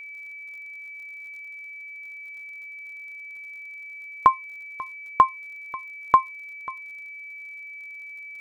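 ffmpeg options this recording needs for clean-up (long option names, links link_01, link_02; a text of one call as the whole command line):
ffmpeg -i in.wav -af "adeclick=threshold=4,bandreject=frequency=2300:width=30" out.wav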